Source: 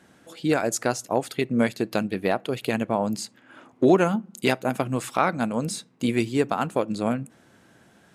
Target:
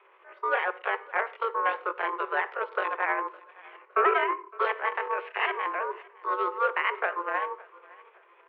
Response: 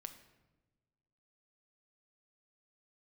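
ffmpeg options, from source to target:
-filter_complex "[0:a]tremolo=f=13:d=0.52,asetrate=76340,aresample=44100,atempo=0.577676,asoftclip=type=tanh:threshold=-17.5dB,aeval=exprs='val(0)*sin(2*PI*470*n/s)':channel_layout=same,aecho=1:1:539|1078:0.0708|0.0255,asplit=2[link_01][link_02];[1:a]atrim=start_sample=2205,atrim=end_sample=6174[link_03];[link_02][link_03]afir=irnorm=-1:irlink=0,volume=2dB[link_04];[link_01][link_04]amix=inputs=2:normalize=0,highpass=frequency=150:width_type=q:width=0.5412,highpass=frequency=150:width_type=q:width=1.307,lowpass=frequency=2500:width_type=q:width=0.5176,lowpass=frequency=2500:width_type=q:width=0.7071,lowpass=frequency=2500:width_type=q:width=1.932,afreqshift=250,asetrate=42336,aresample=44100"

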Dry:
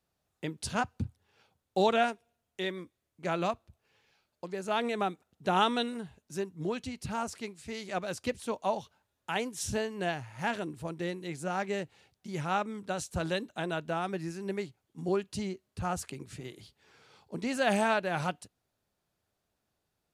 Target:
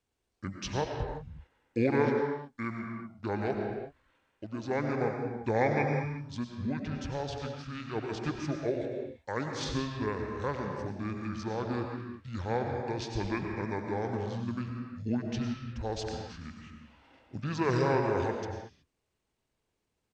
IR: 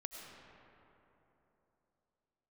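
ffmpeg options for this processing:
-filter_complex "[0:a]asetrate=26990,aresample=44100,atempo=1.63392[link_01];[1:a]atrim=start_sample=2205,afade=type=out:start_time=0.43:duration=0.01,atrim=end_sample=19404[link_02];[link_01][link_02]afir=irnorm=-1:irlink=0,volume=3.5dB"

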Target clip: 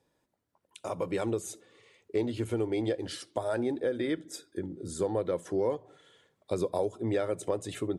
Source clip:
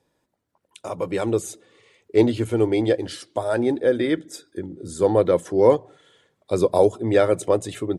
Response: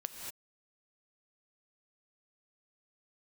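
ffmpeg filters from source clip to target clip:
-filter_complex "[0:a]acompressor=threshold=-23dB:ratio=4,asplit=2[link_01][link_02];[1:a]atrim=start_sample=2205,atrim=end_sample=3528[link_03];[link_02][link_03]afir=irnorm=-1:irlink=0,volume=-1.5dB[link_04];[link_01][link_04]amix=inputs=2:normalize=0,volume=-8.5dB"

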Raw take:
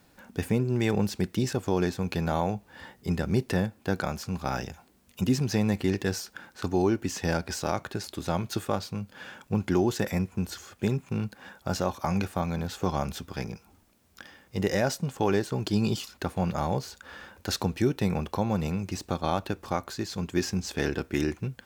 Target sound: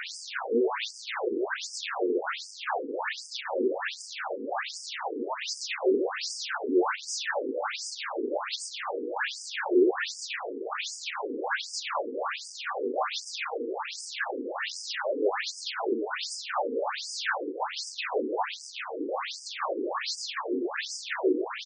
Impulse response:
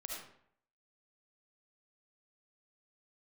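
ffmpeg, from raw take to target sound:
-filter_complex "[0:a]aeval=exprs='val(0)+0.5*0.0376*sgn(val(0))':channel_layout=same,asplit=2[link_01][link_02];[link_02]highpass=frequency=720:poles=1,volume=40dB,asoftclip=type=tanh:threshold=-11dB[link_03];[link_01][link_03]amix=inputs=2:normalize=0,lowpass=frequency=2500:poles=1,volume=-6dB,agate=range=-9dB:threshold=-17dB:ratio=16:detection=peak,aecho=1:1:139.9|277:0.447|0.631,afftfilt=real='re*between(b*sr/1024,340*pow(6800/340,0.5+0.5*sin(2*PI*1.3*pts/sr))/1.41,340*pow(6800/340,0.5+0.5*sin(2*PI*1.3*pts/sr))*1.41)':imag='im*between(b*sr/1024,340*pow(6800/340,0.5+0.5*sin(2*PI*1.3*pts/sr))/1.41,340*pow(6800/340,0.5+0.5*sin(2*PI*1.3*pts/sr))*1.41)':win_size=1024:overlap=0.75,volume=2dB"

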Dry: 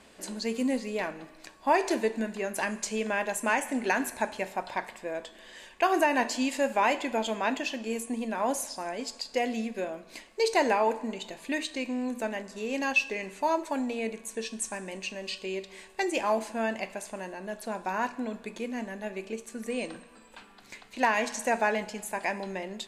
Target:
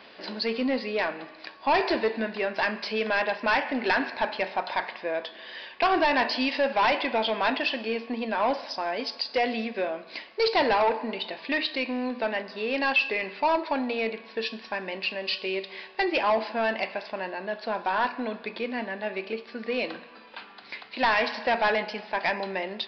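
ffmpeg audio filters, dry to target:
ffmpeg -i in.wav -af "highpass=frequency=520:poles=1,aresample=11025,asoftclip=type=tanh:threshold=-26dB,aresample=44100,volume=8.5dB" out.wav

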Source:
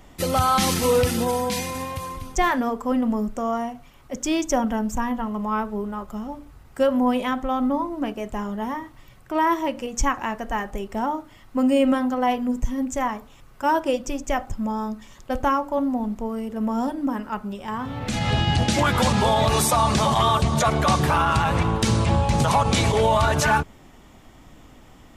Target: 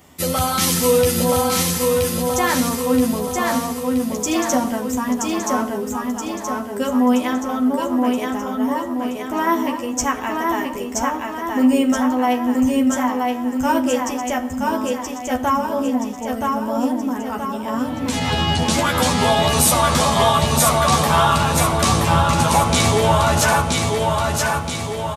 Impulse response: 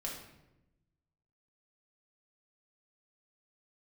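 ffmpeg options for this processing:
-filter_complex "[0:a]highpass=77,highshelf=frequency=6600:gain=10.5,asplit=2[link_01][link_02];[link_02]adelay=12,volume=-4dB[link_03];[link_01][link_03]amix=inputs=2:normalize=0,aecho=1:1:975|1950|2925|3900|4875|5850|6825:0.708|0.375|0.199|0.105|0.0559|0.0296|0.0157,asplit=2[link_04][link_05];[1:a]atrim=start_sample=2205[link_06];[link_05][link_06]afir=irnorm=-1:irlink=0,volume=-8dB[link_07];[link_04][link_07]amix=inputs=2:normalize=0,volume=-2.5dB"

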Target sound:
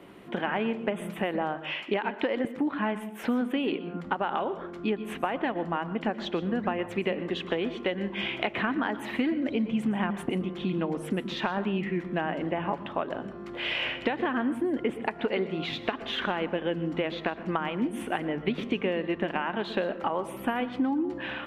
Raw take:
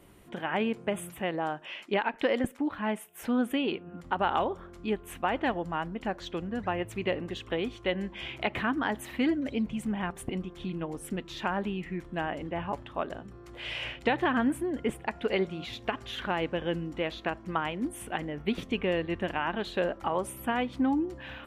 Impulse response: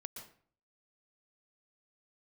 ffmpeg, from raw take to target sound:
-filter_complex "[0:a]acrossover=split=170 4200:gain=0.0794 1 0.158[link_01][link_02][link_03];[link_01][link_02][link_03]amix=inputs=3:normalize=0,acompressor=threshold=-34dB:ratio=6,asplit=2[link_04][link_05];[1:a]atrim=start_sample=2205,lowshelf=frequency=230:gain=12,highshelf=frequency=9000:gain=7.5[link_06];[link_05][link_06]afir=irnorm=-1:irlink=0,volume=-2dB[link_07];[link_04][link_07]amix=inputs=2:normalize=0,volume=5dB"

